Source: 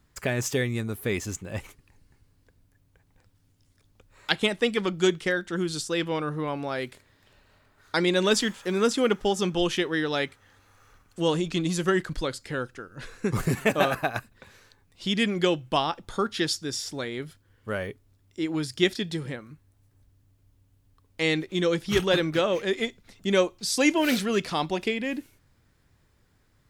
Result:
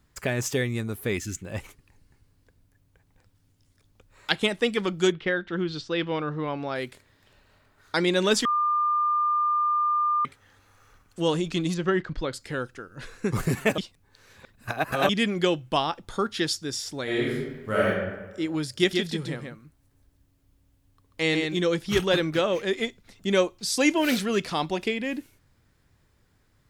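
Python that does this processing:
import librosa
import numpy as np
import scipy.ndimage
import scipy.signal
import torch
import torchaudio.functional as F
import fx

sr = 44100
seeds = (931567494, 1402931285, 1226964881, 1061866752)

y = fx.spec_box(x, sr, start_s=1.18, length_s=0.24, low_hz=390.0, high_hz=1300.0, gain_db=-15)
y = fx.lowpass(y, sr, hz=fx.line((5.11, 3500.0), (6.74, 5800.0)), slope=24, at=(5.11, 6.74), fade=0.02)
y = fx.air_absorb(y, sr, metres=180.0, at=(11.74, 12.33))
y = fx.reverb_throw(y, sr, start_s=17.03, length_s=0.84, rt60_s=1.2, drr_db=-7.5)
y = fx.echo_single(y, sr, ms=137, db=-4.5, at=(18.66, 21.58))
y = fx.edit(y, sr, fx.bleep(start_s=8.45, length_s=1.8, hz=1200.0, db=-20.5),
    fx.reverse_span(start_s=13.78, length_s=1.31), tone=tone)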